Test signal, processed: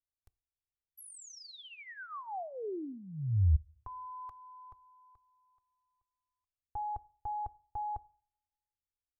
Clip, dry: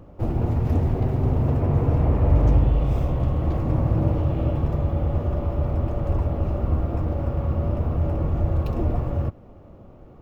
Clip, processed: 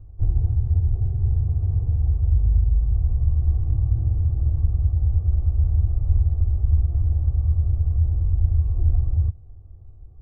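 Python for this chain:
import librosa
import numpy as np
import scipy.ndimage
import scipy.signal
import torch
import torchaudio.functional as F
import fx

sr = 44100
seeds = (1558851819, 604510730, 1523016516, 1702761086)

y = fx.curve_eq(x, sr, hz=(100.0, 220.0, 710.0, 1200.0, 2500.0), db=(0, -19, -17, -21, -28))
y = fx.rider(y, sr, range_db=4, speed_s=0.5)
y = fx.low_shelf(y, sr, hz=180.0, db=7.5)
y = y + 0.55 * np.pad(y, (int(2.6 * sr / 1000.0), 0))[:len(y)]
y = fx.rev_double_slope(y, sr, seeds[0], early_s=0.5, late_s=1.6, knee_db=-25, drr_db=19.5)
y = F.gain(torch.from_numpy(y), -5.5).numpy()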